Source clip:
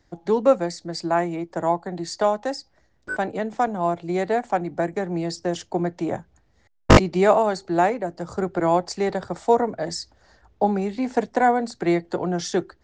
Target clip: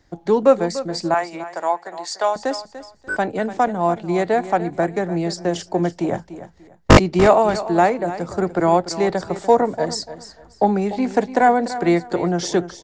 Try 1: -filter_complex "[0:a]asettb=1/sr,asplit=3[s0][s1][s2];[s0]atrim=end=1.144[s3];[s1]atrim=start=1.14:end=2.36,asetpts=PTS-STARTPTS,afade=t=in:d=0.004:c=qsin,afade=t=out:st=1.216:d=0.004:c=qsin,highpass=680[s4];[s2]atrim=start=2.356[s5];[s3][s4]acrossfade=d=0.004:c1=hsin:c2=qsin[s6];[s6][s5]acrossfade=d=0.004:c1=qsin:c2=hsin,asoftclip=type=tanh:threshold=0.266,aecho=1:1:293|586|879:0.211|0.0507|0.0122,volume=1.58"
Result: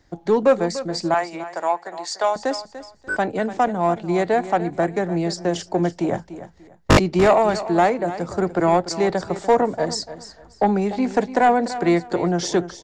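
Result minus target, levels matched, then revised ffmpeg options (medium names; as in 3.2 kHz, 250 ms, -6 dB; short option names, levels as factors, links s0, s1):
saturation: distortion +12 dB
-filter_complex "[0:a]asettb=1/sr,asplit=3[s0][s1][s2];[s0]atrim=end=1.144[s3];[s1]atrim=start=1.14:end=2.36,asetpts=PTS-STARTPTS,afade=t=in:d=0.004:c=qsin,afade=t=out:st=1.216:d=0.004:c=qsin,highpass=680[s4];[s2]atrim=start=2.356[s5];[s3][s4]acrossfade=d=0.004:c1=hsin:c2=qsin[s6];[s6][s5]acrossfade=d=0.004:c1=qsin:c2=hsin,asoftclip=type=tanh:threshold=0.75,aecho=1:1:293|586|879:0.211|0.0507|0.0122,volume=1.58"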